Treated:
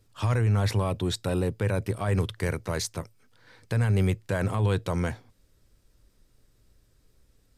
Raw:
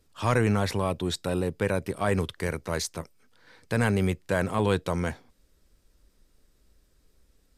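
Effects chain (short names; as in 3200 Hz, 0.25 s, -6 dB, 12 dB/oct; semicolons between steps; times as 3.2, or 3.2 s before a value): bell 110 Hz +14 dB 0.34 oct; limiter -16.5 dBFS, peak gain reduction 9.5 dB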